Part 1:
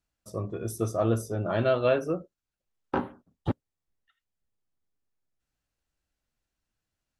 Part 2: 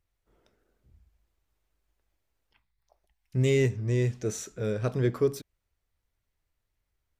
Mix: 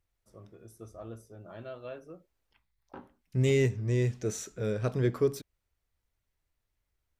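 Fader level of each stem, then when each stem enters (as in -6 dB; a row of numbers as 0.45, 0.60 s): -18.5, -1.5 dB; 0.00, 0.00 s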